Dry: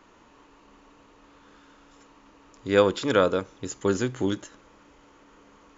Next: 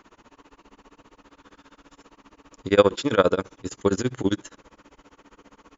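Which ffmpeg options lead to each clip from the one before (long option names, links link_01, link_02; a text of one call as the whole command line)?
ffmpeg -i in.wav -af "tremolo=f=15:d=0.97,volume=6dB" out.wav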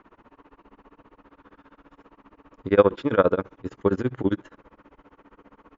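ffmpeg -i in.wav -af "lowpass=1900" out.wav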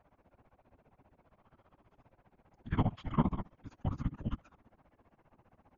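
ffmpeg -i in.wav -af "afreqshift=-330,afftfilt=real='hypot(re,im)*cos(2*PI*random(0))':imag='hypot(re,im)*sin(2*PI*random(1))':win_size=512:overlap=0.75,volume=-5.5dB" out.wav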